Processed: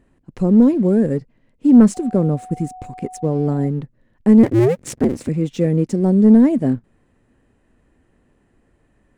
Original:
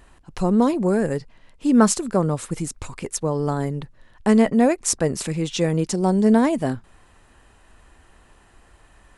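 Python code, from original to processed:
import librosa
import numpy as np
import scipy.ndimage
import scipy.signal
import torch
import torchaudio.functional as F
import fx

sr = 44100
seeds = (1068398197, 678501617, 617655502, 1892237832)

y = fx.cycle_switch(x, sr, every=2, mode='inverted', at=(4.43, 5.29))
y = fx.graphic_eq_10(y, sr, hz=(125, 250, 500, 2000, 8000), db=(8, 12, 9, 8, 4))
y = fx.leveller(y, sr, passes=1)
y = fx.low_shelf(y, sr, hz=490.0, db=9.0)
y = fx.dmg_tone(y, sr, hz=740.0, level_db=-17.0, at=(1.94, 3.67), fade=0.02)
y = y * 10.0 ** (-17.5 / 20.0)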